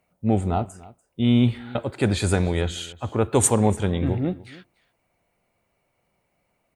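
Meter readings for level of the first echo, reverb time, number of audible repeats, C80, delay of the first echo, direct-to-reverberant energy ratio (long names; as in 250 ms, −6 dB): −21.0 dB, no reverb audible, 1, no reverb audible, 292 ms, no reverb audible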